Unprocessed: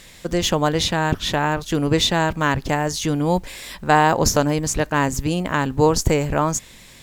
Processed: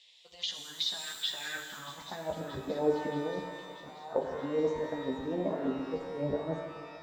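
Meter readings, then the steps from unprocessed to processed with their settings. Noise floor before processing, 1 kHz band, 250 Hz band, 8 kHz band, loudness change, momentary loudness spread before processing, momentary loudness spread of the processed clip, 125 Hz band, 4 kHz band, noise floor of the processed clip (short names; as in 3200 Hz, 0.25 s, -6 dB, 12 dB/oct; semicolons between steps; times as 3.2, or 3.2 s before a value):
-45 dBFS, -20.5 dB, -14.5 dB, -22.0 dB, -14.5 dB, 6 LU, 11 LU, -22.0 dB, -11.5 dB, -53 dBFS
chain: spectral noise reduction 8 dB; negative-ratio compressor -23 dBFS, ratio -0.5; band-pass sweep 3400 Hz -> 480 Hz, 1.15–2.43; envelope phaser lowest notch 230 Hz, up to 2500 Hz, full sweep at -25 dBFS; air absorption 80 m; thin delay 0.63 s, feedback 68%, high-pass 3500 Hz, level -13.5 dB; chorus voices 6, 0.77 Hz, delay 13 ms, depth 2.7 ms; shimmer reverb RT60 1.8 s, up +12 st, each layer -8 dB, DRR 4.5 dB; gain +2 dB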